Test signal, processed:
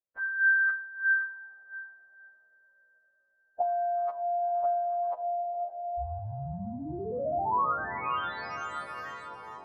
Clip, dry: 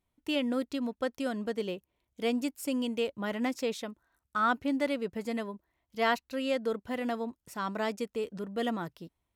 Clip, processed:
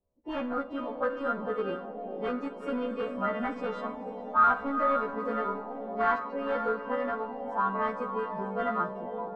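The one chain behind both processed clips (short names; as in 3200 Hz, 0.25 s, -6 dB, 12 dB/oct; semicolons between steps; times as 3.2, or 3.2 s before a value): frequency quantiser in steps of 2 st; hard clip -27 dBFS; on a send: diffused feedback echo 0.483 s, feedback 65%, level -8 dB; on the sum: flange 0.25 Hz, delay 0.8 ms, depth 2 ms, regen +66%; Schroeder reverb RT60 0.8 s, combs from 30 ms, DRR 10.5 dB; envelope low-pass 540–1300 Hz up, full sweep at -33.5 dBFS; gain +4 dB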